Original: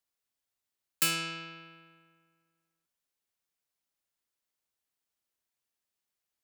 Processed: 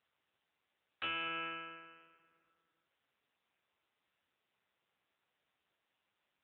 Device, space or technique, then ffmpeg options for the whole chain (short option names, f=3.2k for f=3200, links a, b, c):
voicemail: -filter_complex "[0:a]asettb=1/sr,asplit=3[a][b][c];[a]atrim=end=1.284[d];[b]atrim=start=1.28:end=1.87,asetpts=PTS-STARTPTS,afade=t=in:d=0.004:c=qsin,afade=t=out:st=0.586:d=0.004:c=qsin,aemphasis=mode=reproduction:type=cd[e];[c]atrim=start=1.866[f];[d][e]acrossfade=d=0.004:c1=hsin:c2=qsin[g];[g][f]acrossfade=d=0.004:c1=qsin:c2=hsin,highpass=370,lowpass=3k,acompressor=threshold=-41dB:ratio=8,volume=8dB" -ar 8000 -c:a libopencore_amrnb -b:a 6700